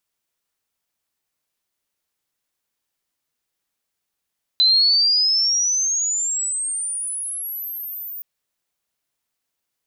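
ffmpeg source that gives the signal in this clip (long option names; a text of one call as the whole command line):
ffmpeg -f lavfi -i "aevalsrc='pow(10,(-11.5-18*t/3.62)/20)*sin(2*PI*4000*3.62/log(15000/4000)*(exp(log(15000/4000)*t/3.62)-1))':duration=3.62:sample_rate=44100" out.wav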